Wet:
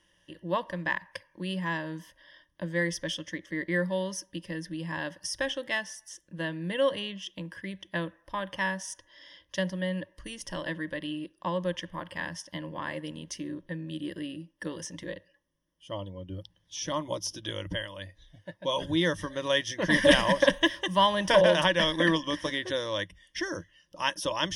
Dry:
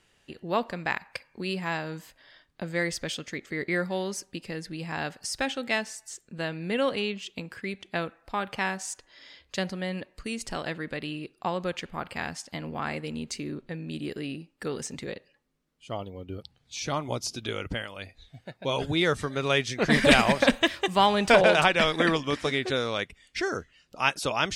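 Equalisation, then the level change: rippled EQ curve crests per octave 1.2, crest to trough 15 dB; -5.0 dB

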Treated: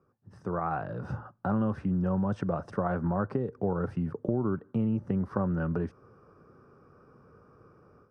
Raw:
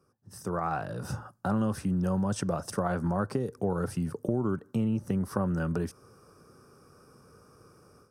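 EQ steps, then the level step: low-pass 1.9 kHz 12 dB/octave; 0.0 dB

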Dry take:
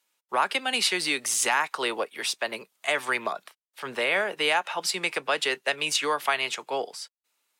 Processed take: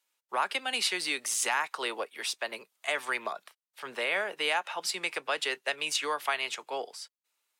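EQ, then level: high-pass 330 Hz 6 dB/octave; -4.5 dB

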